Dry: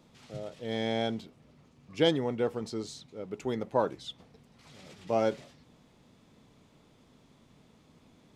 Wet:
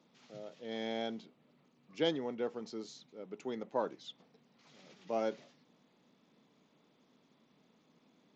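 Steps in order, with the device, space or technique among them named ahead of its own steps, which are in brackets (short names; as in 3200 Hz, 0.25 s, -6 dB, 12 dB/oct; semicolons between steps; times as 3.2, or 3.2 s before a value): Bluetooth headset (HPF 170 Hz 24 dB/oct; downsampling 16000 Hz; gain -7 dB; SBC 64 kbps 16000 Hz)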